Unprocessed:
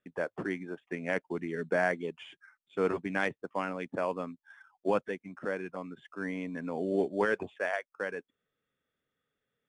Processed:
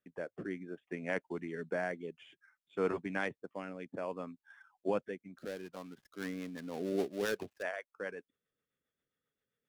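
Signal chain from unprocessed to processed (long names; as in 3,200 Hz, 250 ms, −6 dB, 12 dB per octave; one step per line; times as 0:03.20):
0:05.38–0:07.63: gap after every zero crossing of 0.16 ms
rotating-speaker cabinet horn 0.6 Hz, later 7.5 Hz, at 0:05.71
level −3.5 dB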